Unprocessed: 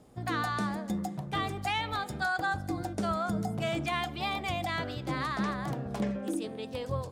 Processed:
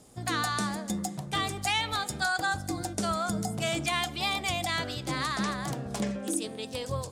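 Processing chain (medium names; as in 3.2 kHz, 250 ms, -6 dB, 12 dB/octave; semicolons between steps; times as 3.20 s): peaking EQ 8.1 kHz +14 dB 2.1 oct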